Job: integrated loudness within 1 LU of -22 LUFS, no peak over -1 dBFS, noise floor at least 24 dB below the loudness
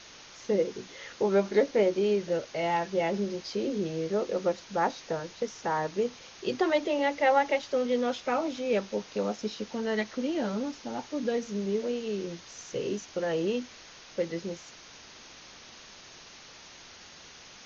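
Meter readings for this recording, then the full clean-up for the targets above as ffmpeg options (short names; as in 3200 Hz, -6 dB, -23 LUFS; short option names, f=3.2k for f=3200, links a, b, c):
noise floor -50 dBFS; noise floor target -54 dBFS; loudness -30.0 LUFS; peak -12.0 dBFS; loudness target -22.0 LUFS
-> -af "afftdn=nr=6:nf=-50"
-af "volume=8dB"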